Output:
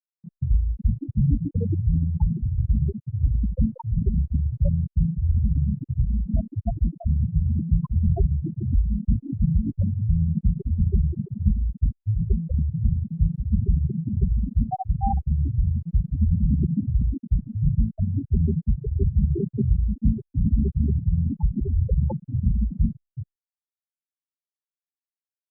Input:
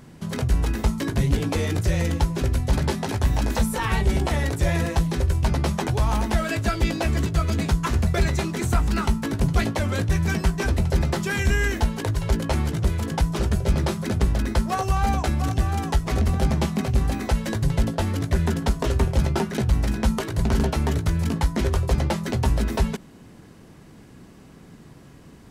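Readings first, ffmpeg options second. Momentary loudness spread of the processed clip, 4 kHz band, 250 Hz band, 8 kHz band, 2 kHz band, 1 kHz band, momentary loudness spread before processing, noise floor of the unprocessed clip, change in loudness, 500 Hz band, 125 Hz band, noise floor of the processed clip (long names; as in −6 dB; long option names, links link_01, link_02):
4 LU, below −40 dB, −1.5 dB, below −40 dB, below −40 dB, −9.5 dB, 2 LU, −47 dBFS, −1.0 dB, −12.0 dB, +1.0 dB, below −85 dBFS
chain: -filter_complex "[0:a]afftfilt=real='re*gte(hypot(re,im),0.251)':imag='im*gte(hypot(re,im),0.251)':win_size=1024:overlap=0.75,lowpass=1100,bandreject=frequency=60:width_type=h:width=6,bandreject=frequency=120:width_type=h:width=6,bandreject=frequency=180:width_type=h:width=6,bandreject=frequency=240:width_type=h:width=6,bandreject=frequency=300:width_type=h:width=6,bandreject=frequency=360:width_type=h:width=6,bandreject=frequency=420:width_type=h:width=6,bandreject=frequency=480:width_type=h:width=6,asplit=9[link_01][link_02][link_03][link_04][link_05][link_06][link_07][link_08][link_09];[link_02]adelay=368,afreqshift=58,volume=-9dB[link_10];[link_03]adelay=736,afreqshift=116,volume=-13.3dB[link_11];[link_04]adelay=1104,afreqshift=174,volume=-17.6dB[link_12];[link_05]adelay=1472,afreqshift=232,volume=-21.9dB[link_13];[link_06]adelay=1840,afreqshift=290,volume=-26.2dB[link_14];[link_07]adelay=2208,afreqshift=348,volume=-30.5dB[link_15];[link_08]adelay=2576,afreqshift=406,volume=-34.8dB[link_16];[link_09]adelay=2944,afreqshift=464,volume=-39.1dB[link_17];[link_01][link_10][link_11][link_12][link_13][link_14][link_15][link_16][link_17]amix=inputs=9:normalize=0,asplit=2[link_18][link_19];[link_19]aeval=exprs='sgn(val(0))*max(abs(val(0))-0.0141,0)':channel_layout=same,volume=-11dB[link_20];[link_18][link_20]amix=inputs=2:normalize=0,afftfilt=real='re*gte(hypot(re,im),0.501)':imag='im*gte(hypot(re,im),0.501)':win_size=1024:overlap=0.75" -ar 48000 -c:a libopus -b:a 96k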